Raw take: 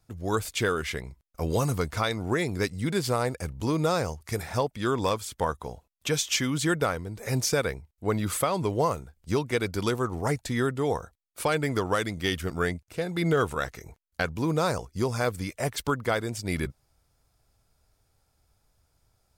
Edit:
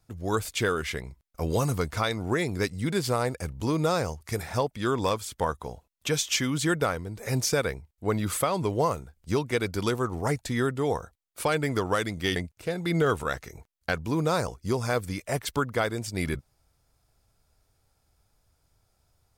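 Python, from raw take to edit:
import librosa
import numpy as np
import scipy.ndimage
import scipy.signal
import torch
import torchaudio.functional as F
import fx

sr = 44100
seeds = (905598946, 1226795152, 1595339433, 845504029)

y = fx.edit(x, sr, fx.cut(start_s=12.36, length_s=0.31), tone=tone)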